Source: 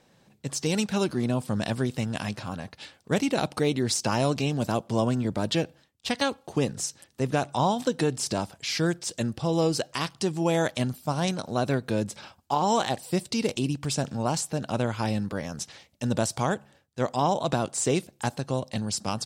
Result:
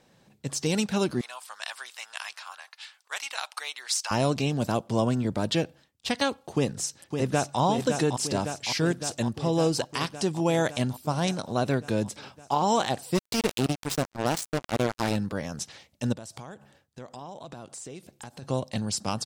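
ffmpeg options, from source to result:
-filter_complex "[0:a]asettb=1/sr,asplit=3[a][b][c];[a]atrim=end=1.214[d];[b]atrim=start=1.21:end=4.11,asetpts=PTS-STARTPTS,afade=t=in:d=0.004:c=qsin,afade=t=out:st=2.896:d=0.004:c=qsin,highpass=f=980:w=0.5412,highpass=f=980:w=1.3066[e];[c]atrim=start=4.106[f];[d][e]acrossfade=d=0.004:c1=hsin:c2=qsin[g];[g][f]acrossfade=d=0.004:c1=qsin:c2=hsin,asplit=2[h][i];[i]afade=t=in:st=6.54:d=0.01,afade=t=out:st=7.6:d=0.01,aecho=0:1:560|1120|1680|2240|2800|3360|3920|4480|5040|5600|6160|6720:0.501187|0.37589|0.281918|0.211438|0.158579|0.118934|0.0892006|0.0669004|0.0501753|0.0376315|0.0282236|0.0211677[j];[h][j]amix=inputs=2:normalize=0,asplit=3[k][l][m];[k]afade=t=out:st=13.14:d=0.02[n];[l]acrusher=bits=3:mix=0:aa=0.5,afade=t=in:st=13.14:d=0.02,afade=t=out:st=15.15:d=0.02[o];[m]afade=t=in:st=15.15:d=0.02[p];[n][o][p]amix=inputs=3:normalize=0,asplit=3[q][r][s];[q]afade=t=out:st=16.12:d=0.02[t];[r]acompressor=threshold=-39dB:ratio=6:attack=3.2:release=140:knee=1:detection=peak,afade=t=in:st=16.12:d=0.02,afade=t=out:st=18.42:d=0.02[u];[s]afade=t=in:st=18.42:d=0.02[v];[t][u][v]amix=inputs=3:normalize=0"

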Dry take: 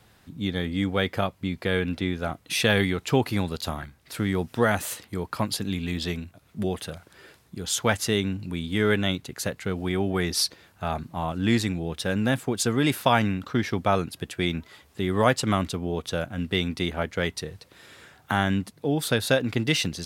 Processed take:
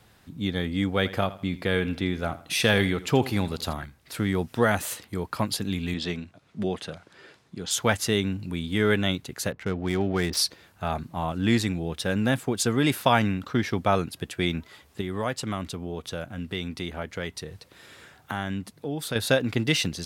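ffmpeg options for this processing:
-filter_complex "[0:a]asettb=1/sr,asplit=3[a][b][c];[a]atrim=end=0.904[d];[b]atrim=start=0.9:end=3.73,asetpts=PTS-STARTPTS,afade=t=in:d=0.004:c=qsin,afade=t=out:st=2.826:d=0.004:c=qsin,aecho=1:1:82|164|246:0.15|0.0494|0.0163,atrim=end_sample=124803[e];[c]atrim=start=3.726[f];[d][e]acrossfade=d=0.004:c1=hsin:c2=qsin[g];[g][f]acrossfade=d=0.004:c1=qsin:c2=hsin,asettb=1/sr,asplit=3[h][i][j];[h]atrim=end=5.944[k];[i]atrim=start=5.94:end=7.71,asetpts=PTS-STARTPTS,afade=t=in:d=0.004:c=qsin,afade=t=out:st=1.766:d=0.004:c=qsin,highpass=120,lowpass=6.4k[l];[j]atrim=start=7.706[m];[k][l]acrossfade=d=0.004:c1=hsin:c2=qsin[n];[n][m]acrossfade=d=0.004:c1=qsin:c2=hsin,asettb=1/sr,asplit=3[o][p][q];[o]atrim=end=9.524[r];[p]atrim=start=9.52:end=10.37,asetpts=PTS-STARTPTS,afade=t=in:d=0.004:c=qsin,afade=t=out:st=0.846:d=0.004:c=qsin,adynamicsmooth=sensitivity=8:basefreq=1.2k[s];[q]atrim=start=10.366[t];[r][s]acrossfade=d=0.004:c1=hsin:c2=qsin[u];[u][t]acrossfade=d=0.004:c1=qsin:c2=hsin,asettb=1/sr,asplit=3[v][w][x];[v]atrim=end=15.014[y];[w]atrim=start=15.01:end=19.16,asetpts=PTS-STARTPTS,afade=t=in:d=0.004:c=qsin,afade=t=out:st=4.146:d=0.004:c=qsin,acompressor=threshold=-37dB:ratio=1.5:attack=3.2:release=140:knee=1:detection=peak[z];[x]atrim=start=19.156[aa];[y][z]acrossfade=d=0.004:c1=hsin:c2=qsin[ab];[ab][aa]acrossfade=d=0.004:c1=qsin:c2=hsin"

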